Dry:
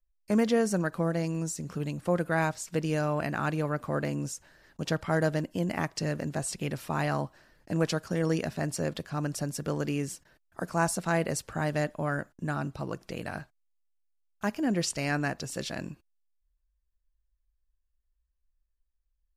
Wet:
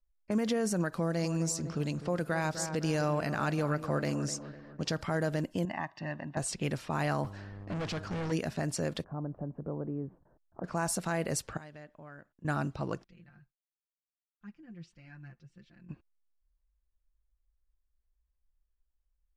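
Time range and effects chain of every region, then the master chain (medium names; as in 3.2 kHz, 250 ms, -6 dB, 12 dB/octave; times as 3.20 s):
0.93–5.04 s: peaking EQ 5 kHz +7 dB 0.67 oct + feedback echo behind a low-pass 251 ms, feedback 47%, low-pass 1.8 kHz, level -12.5 dB
5.65–6.37 s: high-pass 560 Hz 6 dB/octave + tape spacing loss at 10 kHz 29 dB + comb 1.1 ms, depth 85%
7.23–8.31 s: companding laws mixed up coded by mu + mains buzz 100 Hz, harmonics 13, -45 dBFS -8 dB/octave + overload inside the chain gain 32.5 dB
9.04–10.64 s: low-pass 1 kHz 24 dB/octave + compression 1.5:1, threshold -42 dBFS
11.57–12.45 s: pre-emphasis filter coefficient 0.8 + compression 2:1, threshold -49 dBFS
13.04–15.89 s: amplifier tone stack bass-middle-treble 6-0-2 + comb 5.7 ms, depth 82% + flange 1.5 Hz, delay 2.8 ms, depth 5.7 ms, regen +38%
whole clip: level-controlled noise filter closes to 1.6 kHz, open at -27 dBFS; peak limiter -21.5 dBFS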